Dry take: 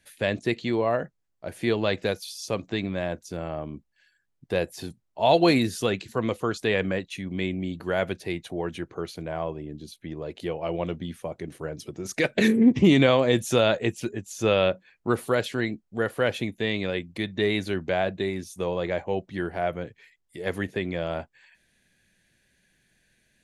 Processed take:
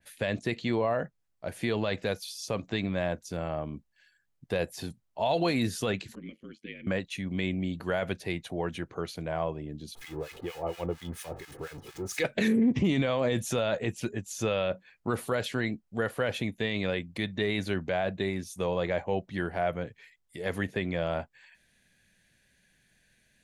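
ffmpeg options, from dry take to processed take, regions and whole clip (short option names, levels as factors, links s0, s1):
-filter_complex "[0:a]asettb=1/sr,asplit=3[s0][s1][s2];[s0]atrim=end=6.154[s3];[s1]atrim=start=6.15:end=6.87,asetpts=PTS-STARTPTS,afade=t=in:d=0.004:c=qsin,afade=t=out:st=0.716:d=0.004:c=qsin,asplit=3[s4][s5][s6];[s4]bandpass=f=270:t=q:w=8,volume=1[s7];[s5]bandpass=f=2290:t=q:w=8,volume=0.501[s8];[s6]bandpass=f=3010:t=q:w=8,volume=0.355[s9];[s7][s8][s9]amix=inputs=3:normalize=0,bandreject=f=3700:w=6.7,aeval=exprs='val(0)*sin(2*PI*47*n/s)':c=same[s10];[s2]atrim=start=6.866[s11];[s3][s10]acrossfade=d=0.004:c1=hsin:c2=qsin[s12];[s12][s11]acrossfade=d=0.004:c1=qsin:c2=hsin,asettb=1/sr,asplit=3[s13][s14][s15];[s13]atrim=end=9.954[s16];[s14]atrim=start=9.95:end=12.25,asetpts=PTS-STARTPTS,afade=t=in:d=0.004:c=qsin,afade=t=out:st=2.296:d=0.004:c=qsin,aeval=exprs='val(0)+0.5*0.0141*sgn(val(0))':c=same,acrossover=split=1200[s17][s18];[s17]aeval=exprs='val(0)*(1-1/2+1/2*cos(2*PI*4.3*n/s))':c=same[s19];[s18]aeval=exprs='val(0)*(1-1/2-1/2*cos(2*PI*4.3*n/s))':c=same[s20];[s19][s20]amix=inputs=2:normalize=0,aecho=1:1:2.4:0.52,atrim=end_sample=101430[s21];[s15]atrim=start=12.246[s22];[s16][s21]acrossfade=d=0.004:c1=hsin:c2=qsin[s23];[s23][s22]acrossfade=d=0.004:c1=qsin:c2=hsin,equalizer=f=350:w=2.4:g=-4.5,alimiter=limit=0.133:level=0:latency=1:release=27,adynamicequalizer=threshold=0.00708:dfrequency=2500:dqfactor=0.7:tfrequency=2500:tqfactor=0.7:attack=5:release=100:ratio=0.375:range=1.5:mode=cutabove:tftype=highshelf"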